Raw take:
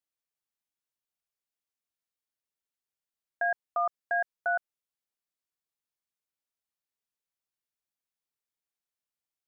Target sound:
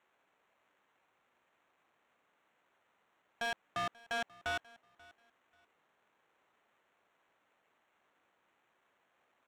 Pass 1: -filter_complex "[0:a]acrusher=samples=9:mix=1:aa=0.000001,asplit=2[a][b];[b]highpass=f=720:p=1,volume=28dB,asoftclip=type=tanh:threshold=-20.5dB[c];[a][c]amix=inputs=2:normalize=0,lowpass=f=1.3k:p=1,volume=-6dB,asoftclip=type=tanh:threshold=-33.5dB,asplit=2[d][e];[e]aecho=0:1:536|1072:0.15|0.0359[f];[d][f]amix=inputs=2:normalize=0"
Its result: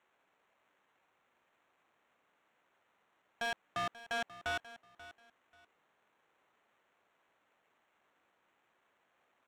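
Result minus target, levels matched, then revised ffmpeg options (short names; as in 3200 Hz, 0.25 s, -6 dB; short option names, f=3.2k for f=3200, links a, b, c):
echo-to-direct +6.5 dB
-filter_complex "[0:a]acrusher=samples=9:mix=1:aa=0.000001,asplit=2[a][b];[b]highpass=f=720:p=1,volume=28dB,asoftclip=type=tanh:threshold=-20.5dB[c];[a][c]amix=inputs=2:normalize=0,lowpass=f=1.3k:p=1,volume=-6dB,asoftclip=type=tanh:threshold=-33.5dB,asplit=2[d][e];[e]aecho=0:1:536|1072:0.0708|0.017[f];[d][f]amix=inputs=2:normalize=0"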